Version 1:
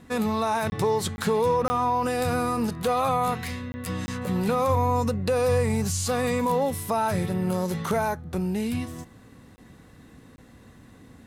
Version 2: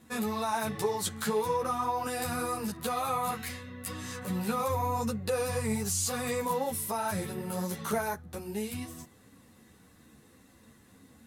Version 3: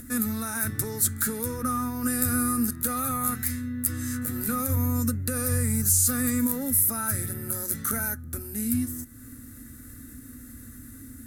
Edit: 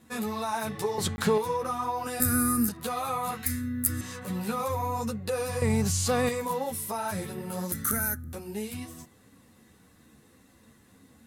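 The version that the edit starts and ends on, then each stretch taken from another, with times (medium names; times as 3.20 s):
2
0.98–1.38 s: from 1
2.20–2.69 s: from 3
3.46–4.01 s: from 3
5.62–6.29 s: from 1
7.72–8.33 s: from 3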